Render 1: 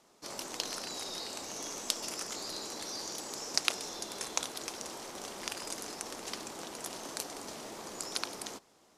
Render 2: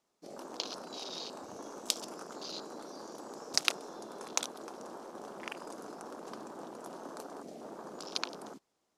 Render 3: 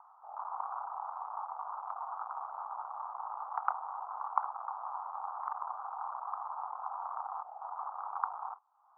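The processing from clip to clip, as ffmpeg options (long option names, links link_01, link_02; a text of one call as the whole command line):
ffmpeg -i in.wav -af "afwtdn=0.00891,volume=1dB" out.wav
ffmpeg -i in.wav -af "acompressor=mode=upward:threshold=-49dB:ratio=2.5,afreqshift=55,asuperpass=centerf=1000:order=8:qfactor=1.9,volume=11.5dB" out.wav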